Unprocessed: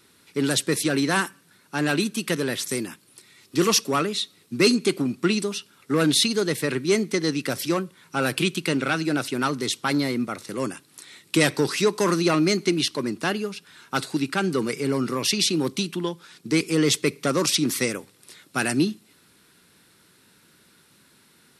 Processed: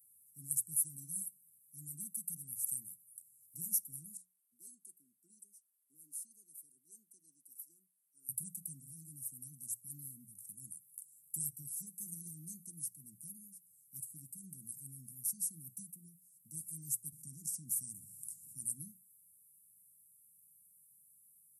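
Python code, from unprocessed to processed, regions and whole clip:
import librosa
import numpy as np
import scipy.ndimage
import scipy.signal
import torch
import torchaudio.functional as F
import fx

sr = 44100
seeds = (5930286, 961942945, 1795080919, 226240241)

y = fx.chain(x, sr, fx.highpass(hz=480.0, slope=24),
    fx.tilt_eq(slope=-4.0), at=(4.17, 8.29))
y = fx.chain(y, sr, fx.lowpass(hz=7600.0, slope=12),
    fx.env_flatten(amount_pct=50), at=(17.12, 18.66))
y = scipy.signal.sosfilt(scipy.signal.cheby2(4, 60, [510.0, 3700.0], 'bandstop', fs=sr, output='sos'), y)
y = F.preemphasis(torch.from_numpy(y), 0.9).numpy()
y = fx.hum_notches(y, sr, base_hz=60, count=3)
y = y * librosa.db_to_amplitude(-1.5)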